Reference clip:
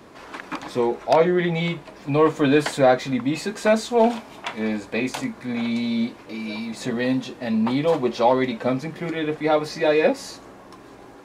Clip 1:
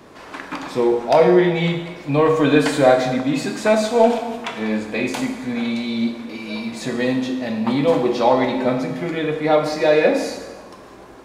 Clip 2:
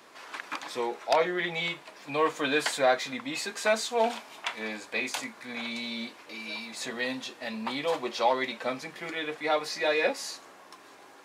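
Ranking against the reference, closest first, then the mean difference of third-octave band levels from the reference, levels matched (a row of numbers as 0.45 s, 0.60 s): 1, 2; 3.0 dB, 6.5 dB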